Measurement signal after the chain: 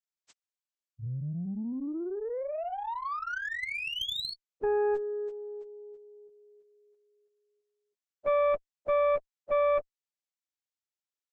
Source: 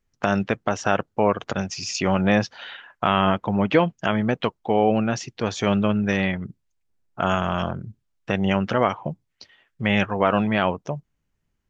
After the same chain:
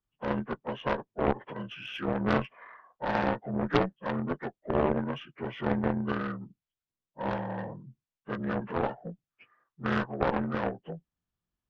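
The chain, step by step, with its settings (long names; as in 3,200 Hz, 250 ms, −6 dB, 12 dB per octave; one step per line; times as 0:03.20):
partials spread apart or drawn together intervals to 78%
harmonic generator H 3 −20 dB, 6 −8 dB, 7 −36 dB, 8 −12 dB, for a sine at −6 dBFS
level −5.5 dB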